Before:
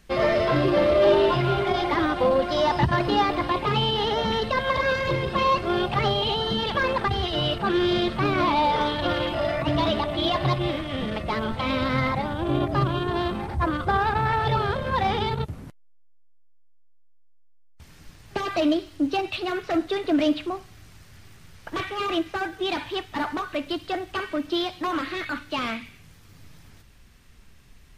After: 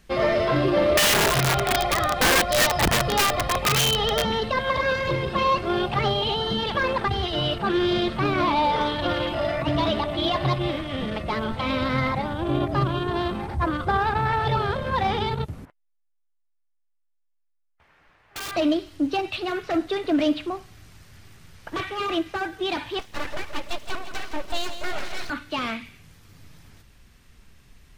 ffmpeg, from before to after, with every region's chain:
ffmpeg -i in.wav -filter_complex "[0:a]asettb=1/sr,asplit=3[link_01][link_02][link_03];[link_01]atrim=end=0.974[link_04];[link_02]atrim=start=0.97:end=4.25,asetpts=PTS-STARTPTS,afade=type=in:duration=0.004:curve=qsin,afade=type=out:start_time=3.276:duration=0.004:curve=qsin,aecho=1:1:1.6:0.8,atrim=end_sample=144648,aeval=exprs='val(0)+0.00891*(sin(2*PI*50*n/s)+sin(2*PI*2*50*n/s)/2+sin(2*PI*3*50*n/s)/3+sin(2*PI*4*50*n/s)/4+sin(2*PI*5*50*n/s)/5)':channel_layout=same,aeval=exprs='(mod(5.01*val(0)+1,2)-1)/5.01':channel_layout=same[link_05];[link_03]atrim=start=4.246[link_06];[link_04][link_05]acrossfade=duration=0.004:curve1=hsin:curve2=qsin[link_07];[link_07][link_06]acrossfade=duration=0.004:curve1=qsin:curve2=hsin,asettb=1/sr,asplit=3[link_08][link_09][link_10];[link_08]atrim=end=15.654[link_11];[link_09]atrim=start=15.65:end=18.52,asetpts=PTS-STARTPTS,afade=type=in:duration=0.004:curve=qsin,afade=type=out:start_time=2.866:duration=0.004:curve=qsin,acrossover=split=490 2500:gain=0.112 1 0.0631[link_12][link_13][link_14];[link_12][link_13][link_14]amix=inputs=3:normalize=0,aeval=exprs='(mod(25.1*val(0)+1,2)-1)/25.1':channel_layout=same[link_15];[link_10]atrim=start=18.516[link_16];[link_11][link_15]acrossfade=duration=0.004:curve1=hsin:curve2=qsin[link_17];[link_17][link_16]acrossfade=duration=0.004:curve1=qsin:curve2=hsin,asettb=1/sr,asplit=3[link_18][link_19][link_20];[link_18]atrim=end=22.994[link_21];[link_19]atrim=start=22.99:end=25.3,asetpts=PTS-STARTPTS,afade=type=in:duration=0.004:curve=qsin,afade=type=out:start_time=2.306:duration=0.004:curve=qsin,asuperstop=centerf=1400:order=12:qfactor=4.6,aeval=exprs='abs(val(0))':channel_layout=same,aecho=1:1:166|332|498|664|830|996:0.316|0.171|0.0922|0.0498|0.0269|0.0145,atrim=end_sample=101871[link_22];[link_20]atrim=start=25.296[link_23];[link_21][link_22]acrossfade=duration=0.004:curve1=hsin:curve2=qsin[link_24];[link_24][link_23]acrossfade=duration=0.004:curve1=qsin:curve2=hsin" out.wav

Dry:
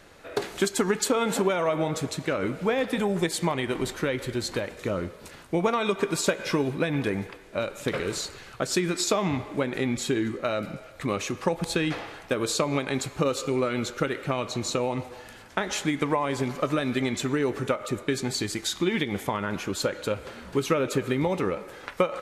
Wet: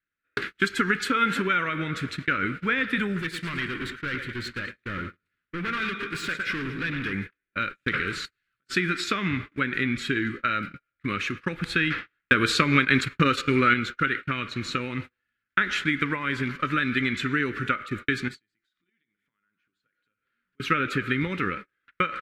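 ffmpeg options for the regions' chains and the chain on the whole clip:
ffmpeg -i in.wav -filter_complex "[0:a]asettb=1/sr,asplit=3[link_01][link_02][link_03];[link_01]atrim=end=3.204[link_04];[link_02]atrim=start=3.2:end=7.13,asetpts=PTS-STARTPTS,afade=type=in:duration=0.004:curve=qsin,afade=type=out:start_time=3.926:duration=0.004:curve=qsin,aecho=1:1:109|218|327|436|545:0.282|0.127|0.0571|0.0257|0.0116,atrim=end_sample=173313,asoftclip=type=hard:threshold=-28dB[link_05];[link_03]atrim=start=7.126[link_06];[link_04][link_05]acrossfade=duration=0.004:curve1=hsin:curve2=qsin[link_07];[link_07][link_06]acrossfade=duration=0.004:curve1=qsin:curve2=hsin,asettb=1/sr,asplit=3[link_08][link_09][link_10];[link_08]atrim=end=8.254[link_11];[link_09]atrim=start=8.25:end=8.67,asetpts=PTS-STARTPTS,afade=type=in:duration=0.004:curve=qsin,afade=type=out:start_time=0.416:duration=0.004:curve=qsin,aemphasis=mode=production:type=50fm,acompressor=threshold=-39dB:ratio=16:attack=3.2:release=140:knee=1:detection=peak[link_12];[link_10]atrim=start=8.666[link_13];[link_11][link_12]acrossfade=duration=0.004:curve1=hsin:curve2=qsin[link_14];[link_14][link_13]acrossfade=duration=0.004:curve1=qsin:curve2=hsin,asettb=1/sr,asplit=3[link_15][link_16][link_17];[link_15]atrim=end=12.214[link_18];[link_16]atrim=start=12.21:end=13.74,asetpts=PTS-STARTPTS,afade=type=in:duration=0.004:curve=qsin,afade=type=out:start_time=1.526:duration=0.004:curve=qsin,agate=range=-9dB:threshold=-33dB:ratio=16:release=100:detection=peak,acontrast=64[link_19];[link_17]atrim=start=13.736[link_20];[link_18][link_19]acrossfade=duration=0.004:curve1=hsin:curve2=qsin[link_21];[link_21][link_20]acrossfade=duration=0.004:curve1=qsin:curve2=hsin,asettb=1/sr,asplit=3[link_22][link_23][link_24];[link_22]atrim=end=18.284[link_25];[link_23]atrim=start=18.28:end=20.6,asetpts=PTS-STARTPTS,afade=type=in:duration=0.004:curve=qsin,afade=type=out:start_time=2.316:duration=0.004:curve=qsin,equalizer=frequency=69:width_type=o:width=0.83:gain=-13,acompressor=threshold=-37dB:ratio=5:attack=3.2:release=140:knee=1:detection=peak,bandreject=frequency=50:width_type=h:width=6,bandreject=frequency=100:width_type=h:width=6,bandreject=frequency=150:width_type=h:width=6,bandreject=frequency=200:width_type=h:width=6,bandreject=frequency=250:width_type=h:width=6,bandreject=frequency=300:width_type=h:width=6,bandreject=frequency=350:width_type=h:width=6,bandreject=frequency=400:width_type=h:width=6,bandreject=frequency=450:width_type=h:width=6[link_26];[link_24]atrim=start=20.596[link_27];[link_25][link_26]acrossfade=duration=0.004:curve1=hsin:curve2=qsin[link_28];[link_28][link_27]acrossfade=duration=0.004:curve1=qsin:curve2=hsin,agate=range=-40dB:threshold=-33dB:ratio=16:detection=peak,firequalizer=gain_entry='entry(270,0);entry(730,-21);entry(1400,11);entry(6400,-11)':delay=0.05:min_phase=1" out.wav

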